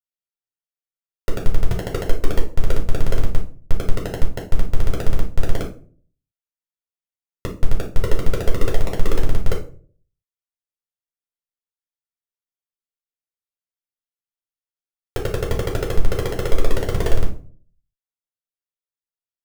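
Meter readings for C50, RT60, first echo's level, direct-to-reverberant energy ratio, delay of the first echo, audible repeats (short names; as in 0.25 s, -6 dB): 9.0 dB, 0.45 s, none, -1.0 dB, none, none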